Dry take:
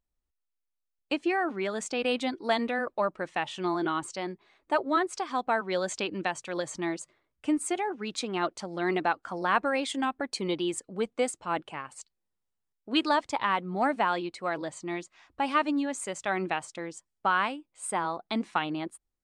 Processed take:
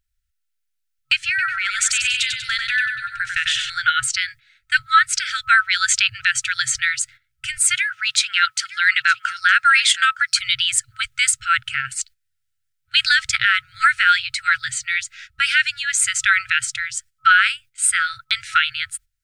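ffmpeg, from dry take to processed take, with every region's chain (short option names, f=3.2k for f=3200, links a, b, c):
-filter_complex "[0:a]asettb=1/sr,asplit=3[a][b][c];[a]atrim=end=1.294[d];[b]atrim=start=1.29:end=3.7,asetpts=PTS-STARTPTS,afade=t=in:d=0.004:c=qsin,afade=t=out:st=2.406:d=0.004:c=qsin,acompressor=threshold=-31dB:ratio=4:attack=3.2:release=140:knee=1:detection=peak,aecho=1:1:96|192|288|384|480|576:0.562|0.259|0.119|0.0547|0.0252|0.0116,atrim=end_sample=106281[e];[c]atrim=start=3.696[f];[d][e]acrossfade=d=0.004:c1=hsin:c2=qsin[g];[g][f]acrossfade=d=0.004:c1=qsin:c2=hsin,asettb=1/sr,asplit=3[h][i][j];[h]atrim=end=7.744[k];[i]atrim=start=7.74:end=10.39,asetpts=PTS-STARTPTS,afade=t=in:d=0.004:c=qsin,afade=t=out:st=2.646:d=0.004:c=qsin,highpass=230,aecho=1:1:914:0.15,atrim=end_sample=116865[l];[j]atrim=start=10.386[m];[k][l]acrossfade=d=0.004:c1=hsin:c2=qsin[n];[n][m]acrossfade=d=0.004:c1=qsin:c2=hsin,afftfilt=real='re*(1-between(b*sr/4096,130,1300))':imag='im*(1-between(b*sr/4096,130,1300))':win_size=4096:overlap=0.75,agate=range=-11dB:threshold=-58dB:ratio=16:detection=peak,alimiter=level_in=23.5dB:limit=-1dB:release=50:level=0:latency=1,volume=-3.5dB"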